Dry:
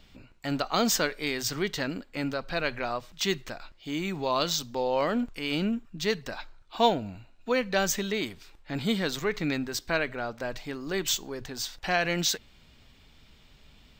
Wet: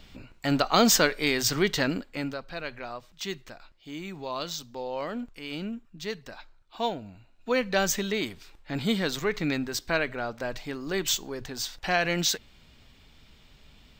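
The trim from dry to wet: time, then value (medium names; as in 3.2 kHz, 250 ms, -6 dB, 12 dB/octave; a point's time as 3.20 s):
1.94 s +5 dB
2.50 s -6.5 dB
7.16 s -6.5 dB
7.56 s +1 dB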